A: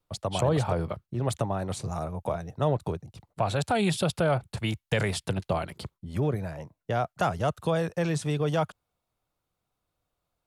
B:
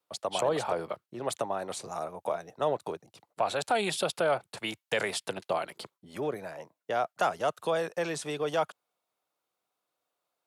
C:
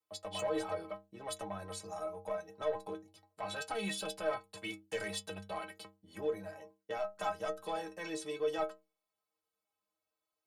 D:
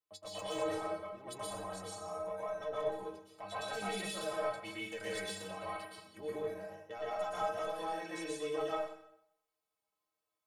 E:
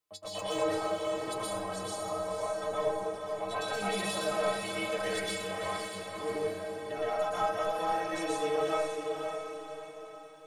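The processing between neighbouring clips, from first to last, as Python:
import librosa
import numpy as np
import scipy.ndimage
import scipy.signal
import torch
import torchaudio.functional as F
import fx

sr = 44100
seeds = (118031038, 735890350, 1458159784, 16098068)

y1 = scipy.signal.sosfilt(scipy.signal.butter(2, 380.0, 'highpass', fs=sr, output='sos'), x)
y2 = 10.0 ** (-23.0 / 20.0) * np.tanh(y1 / 10.0 ** (-23.0 / 20.0))
y2 = fx.low_shelf(y2, sr, hz=97.0, db=6.5)
y2 = fx.stiff_resonator(y2, sr, f0_hz=94.0, decay_s=0.43, stiffness=0.03)
y2 = y2 * librosa.db_to_amplitude(4.5)
y3 = fx.rev_plate(y2, sr, seeds[0], rt60_s=0.72, hf_ratio=0.9, predelay_ms=105, drr_db=-6.0)
y3 = y3 * librosa.db_to_amplitude(-6.5)
y4 = fx.echo_diffused(y3, sr, ms=537, feedback_pct=46, wet_db=-5.0)
y4 = y4 * librosa.db_to_amplitude(5.5)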